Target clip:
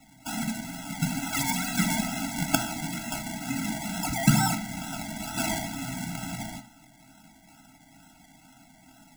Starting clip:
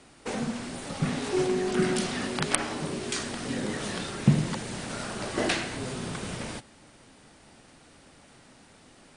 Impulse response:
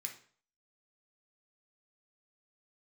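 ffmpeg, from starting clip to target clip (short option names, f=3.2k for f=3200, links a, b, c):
-filter_complex "[0:a]asettb=1/sr,asplit=3[a][b][c];[a]atrim=end=4.034[d];[b]atrim=start=4.03:end=4.54,asetpts=PTS-STARTPTS,afade=t=in:d=0.004:c=qsin,afade=t=out:st=0.506:d=0.004:c=qsin,aeval=exprs='val(0)+0.0501*sin(2*PI*3100*n/s)':c=same[e];[c]atrim=start=4.536[f];[d][e]acrossfade=d=0.004:c1=hsin:c2=qsin[g];[g][f]acrossfade=d=0.004:c1=qsin:c2=hsin,acrusher=samples=27:mix=1:aa=0.000001:lfo=1:lforange=16.2:lforate=2.2,asplit=2[h][i];[1:a]atrim=start_sample=2205,highshelf=f=2.9k:g=8[j];[i][j]afir=irnorm=-1:irlink=0,volume=2dB[k];[h][k]amix=inputs=2:normalize=0,afftfilt=real='re*eq(mod(floor(b*sr/1024/320),2),0)':imag='im*eq(mod(floor(b*sr/1024/320),2),0)':win_size=1024:overlap=0.75"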